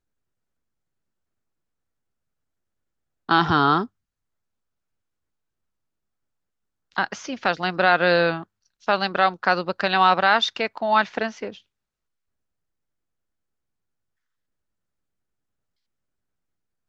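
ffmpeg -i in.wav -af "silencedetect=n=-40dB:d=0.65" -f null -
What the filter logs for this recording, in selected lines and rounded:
silence_start: 0.00
silence_end: 3.29 | silence_duration: 3.29
silence_start: 3.86
silence_end: 6.92 | silence_duration: 3.06
silence_start: 11.58
silence_end: 16.89 | silence_duration: 5.31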